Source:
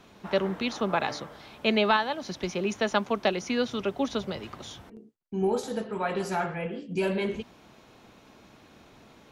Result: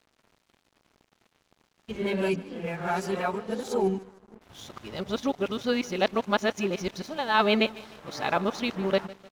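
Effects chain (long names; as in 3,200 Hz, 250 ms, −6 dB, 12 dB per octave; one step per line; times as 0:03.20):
played backwards from end to start
repeating echo 152 ms, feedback 51%, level −18.5 dB
dead-zone distortion −49.5 dBFS
level +1 dB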